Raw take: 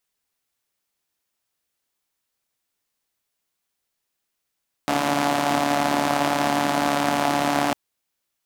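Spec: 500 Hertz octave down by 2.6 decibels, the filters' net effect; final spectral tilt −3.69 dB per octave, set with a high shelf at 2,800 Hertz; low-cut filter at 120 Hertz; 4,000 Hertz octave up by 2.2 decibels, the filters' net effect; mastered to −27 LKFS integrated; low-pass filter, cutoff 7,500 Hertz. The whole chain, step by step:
high-pass filter 120 Hz
low-pass filter 7,500 Hz
parametric band 500 Hz −3.5 dB
high-shelf EQ 2,800 Hz −3.5 dB
parametric band 4,000 Hz +6 dB
level −4 dB

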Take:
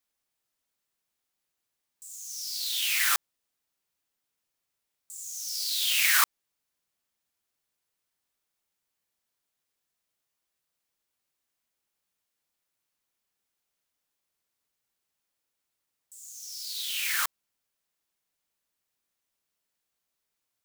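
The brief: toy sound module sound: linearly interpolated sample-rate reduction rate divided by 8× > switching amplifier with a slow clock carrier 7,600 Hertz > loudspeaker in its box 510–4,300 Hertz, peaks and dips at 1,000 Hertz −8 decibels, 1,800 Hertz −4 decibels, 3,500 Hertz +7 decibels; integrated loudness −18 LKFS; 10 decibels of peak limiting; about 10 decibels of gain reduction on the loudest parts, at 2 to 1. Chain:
downward compressor 2 to 1, threshold −37 dBFS
brickwall limiter −30 dBFS
linearly interpolated sample-rate reduction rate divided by 8×
switching amplifier with a slow clock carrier 7,600 Hz
loudspeaker in its box 510–4,300 Hz, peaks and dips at 1,000 Hz −8 dB, 1,800 Hz −4 dB, 3,500 Hz +7 dB
level +27.5 dB

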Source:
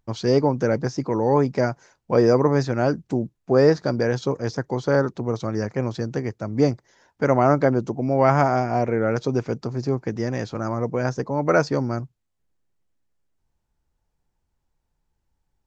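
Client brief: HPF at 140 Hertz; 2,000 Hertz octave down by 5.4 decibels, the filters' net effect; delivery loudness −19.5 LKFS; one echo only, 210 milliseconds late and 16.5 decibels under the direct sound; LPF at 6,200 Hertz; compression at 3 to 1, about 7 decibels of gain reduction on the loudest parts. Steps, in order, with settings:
high-pass filter 140 Hz
low-pass filter 6,200 Hz
parametric band 2,000 Hz −8 dB
downward compressor 3 to 1, threshold −22 dBFS
single-tap delay 210 ms −16.5 dB
level +8 dB

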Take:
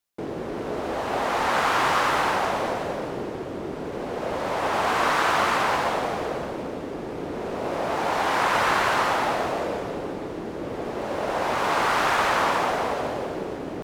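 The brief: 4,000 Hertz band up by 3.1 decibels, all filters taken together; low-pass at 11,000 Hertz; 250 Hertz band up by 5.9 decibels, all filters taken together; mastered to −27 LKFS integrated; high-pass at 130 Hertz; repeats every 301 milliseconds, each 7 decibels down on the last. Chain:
high-pass filter 130 Hz
low-pass filter 11,000 Hz
parametric band 250 Hz +8 dB
parametric band 4,000 Hz +4 dB
repeating echo 301 ms, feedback 45%, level −7 dB
level −4.5 dB

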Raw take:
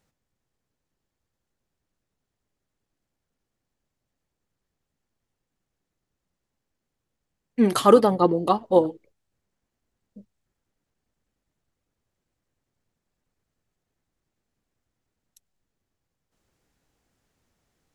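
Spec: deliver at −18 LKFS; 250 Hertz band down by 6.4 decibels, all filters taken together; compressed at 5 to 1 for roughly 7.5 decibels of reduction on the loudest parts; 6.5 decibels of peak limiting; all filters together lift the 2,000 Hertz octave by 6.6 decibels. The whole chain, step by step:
parametric band 250 Hz −9 dB
parametric band 2,000 Hz +9 dB
downward compressor 5 to 1, threshold −18 dBFS
level +9.5 dB
brickwall limiter −5 dBFS

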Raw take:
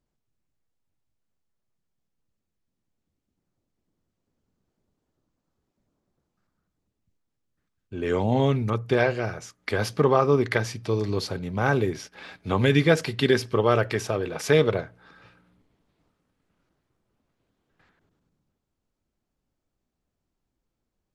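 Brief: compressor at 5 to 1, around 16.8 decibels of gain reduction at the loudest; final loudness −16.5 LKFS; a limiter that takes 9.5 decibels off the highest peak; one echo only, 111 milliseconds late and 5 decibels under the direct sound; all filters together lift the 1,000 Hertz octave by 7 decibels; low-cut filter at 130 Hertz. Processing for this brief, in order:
high-pass filter 130 Hz
parametric band 1,000 Hz +9 dB
downward compressor 5 to 1, threshold −31 dBFS
brickwall limiter −23.5 dBFS
single-tap delay 111 ms −5 dB
level +19 dB

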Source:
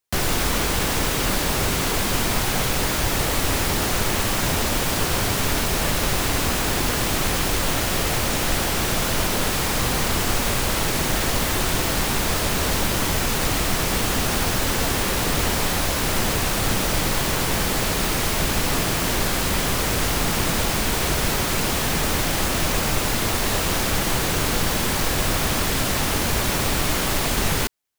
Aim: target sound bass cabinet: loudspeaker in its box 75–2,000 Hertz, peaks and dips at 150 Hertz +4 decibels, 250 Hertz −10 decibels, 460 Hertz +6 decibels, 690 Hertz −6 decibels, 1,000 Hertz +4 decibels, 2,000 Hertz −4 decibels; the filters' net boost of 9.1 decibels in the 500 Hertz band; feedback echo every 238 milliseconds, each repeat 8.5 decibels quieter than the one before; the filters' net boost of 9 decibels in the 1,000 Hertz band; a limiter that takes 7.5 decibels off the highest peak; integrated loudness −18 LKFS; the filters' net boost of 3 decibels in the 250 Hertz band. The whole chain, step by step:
parametric band 250 Hz +5.5 dB
parametric band 500 Hz +5.5 dB
parametric band 1,000 Hz +8 dB
brickwall limiter −11.5 dBFS
loudspeaker in its box 75–2,000 Hz, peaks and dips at 150 Hz +4 dB, 250 Hz −10 dB, 460 Hz +6 dB, 690 Hz −6 dB, 1,000 Hz +4 dB, 2,000 Hz −4 dB
repeating echo 238 ms, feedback 38%, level −8.5 dB
level +3.5 dB

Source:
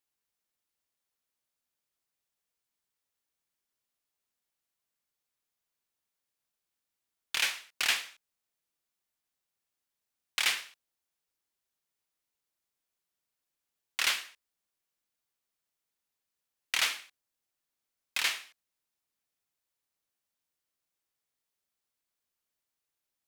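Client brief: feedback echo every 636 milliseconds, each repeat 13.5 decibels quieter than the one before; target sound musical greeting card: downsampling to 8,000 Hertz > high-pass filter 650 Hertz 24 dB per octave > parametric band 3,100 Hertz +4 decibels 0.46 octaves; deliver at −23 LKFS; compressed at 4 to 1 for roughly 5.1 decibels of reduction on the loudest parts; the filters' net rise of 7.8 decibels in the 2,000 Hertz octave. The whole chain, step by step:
parametric band 2,000 Hz +8.5 dB
downward compressor 4 to 1, threshold −24 dBFS
repeating echo 636 ms, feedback 21%, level −13.5 dB
downsampling to 8,000 Hz
high-pass filter 650 Hz 24 dB per octave
parametric band 3,100 Hz +4 dB 0.46 octaves
level +8 dB

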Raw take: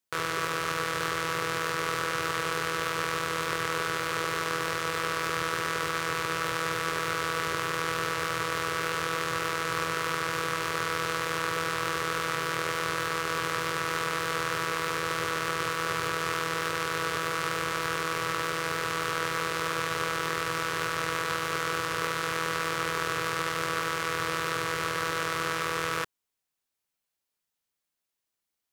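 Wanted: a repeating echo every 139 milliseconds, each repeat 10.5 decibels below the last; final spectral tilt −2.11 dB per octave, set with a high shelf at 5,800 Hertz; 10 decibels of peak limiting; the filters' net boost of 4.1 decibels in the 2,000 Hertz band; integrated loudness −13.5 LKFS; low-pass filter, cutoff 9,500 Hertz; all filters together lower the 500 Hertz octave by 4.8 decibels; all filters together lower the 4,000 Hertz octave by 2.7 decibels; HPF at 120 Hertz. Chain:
high-pass filter 120 Hz
low-pass filter 9,500 Hz
parametric band 500 Hz −5.5 dB
parametric band 2,000 Hz +7 dB
parametric band 4,000 Hz −7.5 dB
high-shelf EQ 5,800 Hz +3 dB
brickwall limiter −21.5 dBFS
repeating echo 139 ms, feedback 30%, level −10.5 dB
level +19.5 dB

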